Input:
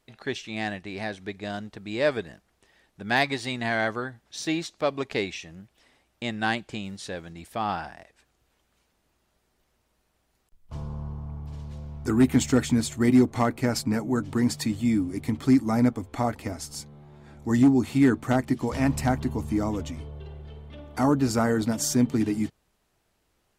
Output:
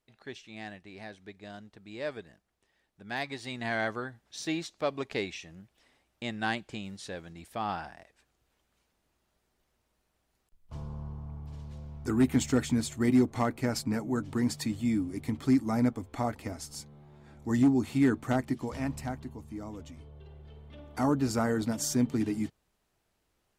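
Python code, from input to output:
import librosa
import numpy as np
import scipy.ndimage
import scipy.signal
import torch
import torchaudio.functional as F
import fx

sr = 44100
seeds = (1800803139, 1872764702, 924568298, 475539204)

y = fx.gain(x, sr, db=fx.line((3.17, -12.0), (3.73, -5.0), (18.4, -5.0), (19.45, -15.5), (20.84, -5.0)))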